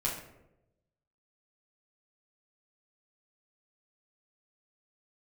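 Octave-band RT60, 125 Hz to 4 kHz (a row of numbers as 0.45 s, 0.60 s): 1.2 s, 1.0 s, 1.1 s, 0.75 s, 0.65 s, 0.45 s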